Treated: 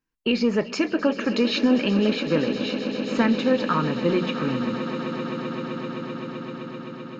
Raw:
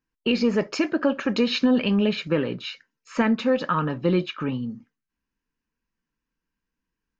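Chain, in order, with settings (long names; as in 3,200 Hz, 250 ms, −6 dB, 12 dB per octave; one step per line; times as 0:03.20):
mains-hum notches 60/120/180 Hz
echo that builds up and dies away 129 ms, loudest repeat 8, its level −16 dB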